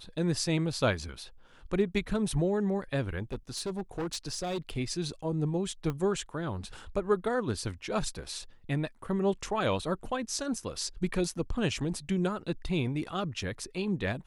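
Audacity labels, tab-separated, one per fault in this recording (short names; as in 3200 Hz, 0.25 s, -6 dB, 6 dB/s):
3.230000	4.780000	clipped -29.5 dBFS
5.900000	5.900000	pop -21 dBFS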